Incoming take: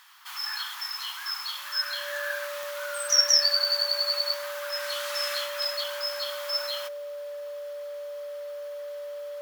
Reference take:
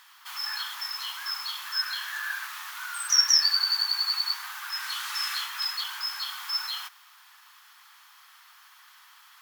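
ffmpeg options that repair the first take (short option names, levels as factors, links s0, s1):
-af "adeclick=t=4,bandreject=f=580:w=30"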